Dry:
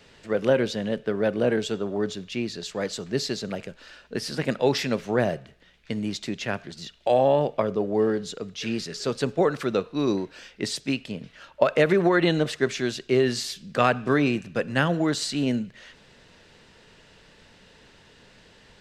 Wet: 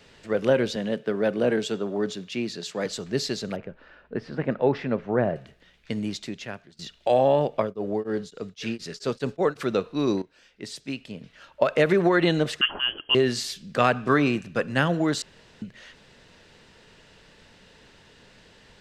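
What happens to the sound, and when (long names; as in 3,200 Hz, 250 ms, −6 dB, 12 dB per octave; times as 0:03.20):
0:00.76–0:02.86: high-pass filter 120 Hz 24 dB per octave
0:03.56–0:05.36: low-pass filter 1,600 Hz
0:06.00–0:06.79: fade out, to −20 dB
0:07.47–0:09.61: tremolo along a rectified sine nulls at 2.9 Hz → 6.1 Hz
0:10.22–0:11.94: fade in linear, from −16.5 dB
0:12.61–0:13.15: voice inversion scrambler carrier 3,200 Hz
0:13.94–0:14.67: dynamic equaliser 1,200 Hz, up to +7 dB, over −44 dBFS
0:15.22–0:15.62: fill with room tone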